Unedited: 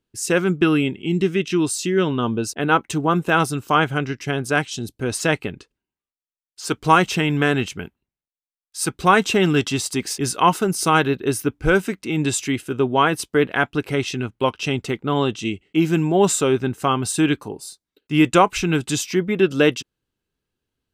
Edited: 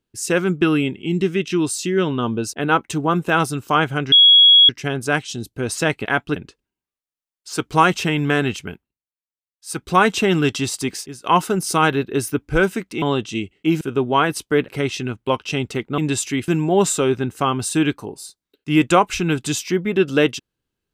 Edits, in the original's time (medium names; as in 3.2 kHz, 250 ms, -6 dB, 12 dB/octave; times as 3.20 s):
4.12 s: add tone 3.33 kHz -6.5 dBFS 0.57 s
7.82–8.99 s: dip -13 dB, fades 0.26 s
10.05–10.36 s: fade out quadratic, to -18.5 dB
12.14–12.64 s: swap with 15.12–15.91 s
13.51–13.82 s: move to 5.48 s